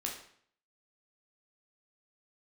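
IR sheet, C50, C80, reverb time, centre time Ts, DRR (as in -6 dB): 5.5 dB, 9.5 dB, 0.60 s, 30 ms, -1.0 dB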